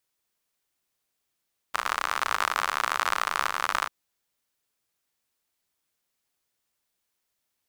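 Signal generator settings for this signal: rain from filtered ticks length 2.14 s, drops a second 69, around 1.2 kHz, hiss -25 dB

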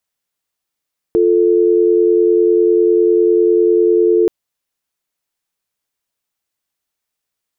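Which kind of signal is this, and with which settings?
call progress tone dial tone, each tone -11.5 dBFS 3.13 s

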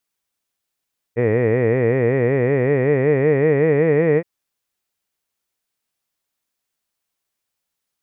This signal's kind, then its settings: formant vowel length 3.07 s, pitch 113 Hz, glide +6 st, vibrato depth 1.45 st, F1 460 Hz, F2 1.9 kHz, F3 2.4 kHz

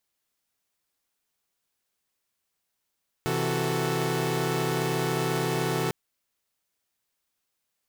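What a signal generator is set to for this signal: chord C3/E3/F#4/A4 saw, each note -28 dBFS 2.65 s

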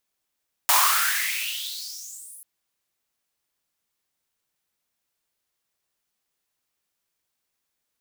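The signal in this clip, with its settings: swept filtered noise white, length 1.74 s highpass, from 860 Hz, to 11 kHz, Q 7, exponential, gain ramp -33 dB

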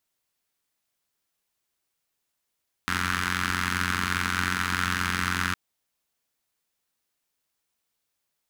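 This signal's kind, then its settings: four-cylinder engine model, steady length 2.66 s, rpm 2700, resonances 93/200/1400 Hz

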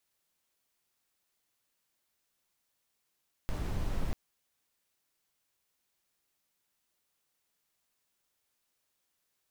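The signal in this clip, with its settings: noise brown, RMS -31.5 dBFS 0.64 s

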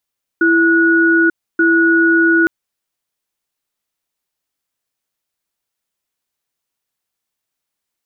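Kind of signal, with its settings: cadence 332 Hz, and 1.46 kHz, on 0.89 s, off 0.29 s, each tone -11.5 dBFS 2.06 s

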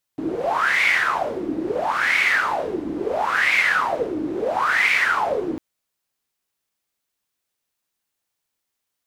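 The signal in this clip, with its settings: wind-like swept noise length 5.40 s, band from 300 Hz, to 2.2 kHz, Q 9.3, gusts 4, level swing 8 dB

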